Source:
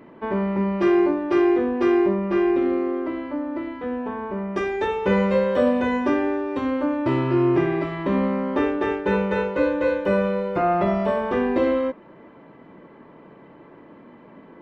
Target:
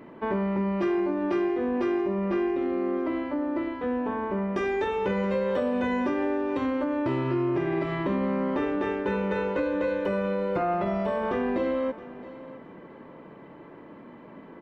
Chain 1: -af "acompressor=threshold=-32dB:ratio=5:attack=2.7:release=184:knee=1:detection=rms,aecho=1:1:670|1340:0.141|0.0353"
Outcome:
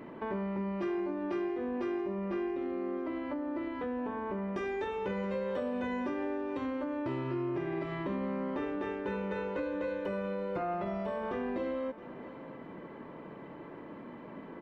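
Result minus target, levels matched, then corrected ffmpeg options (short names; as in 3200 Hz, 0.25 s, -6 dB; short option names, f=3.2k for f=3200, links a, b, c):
compressor: peak gain reduction +8 dB
-af "acompressor=threshold=-22dB:ratio=5:attack=2.7:release=184:knee=1:detection=rms,aecho=1:1:670|1340:0.141|0.0353"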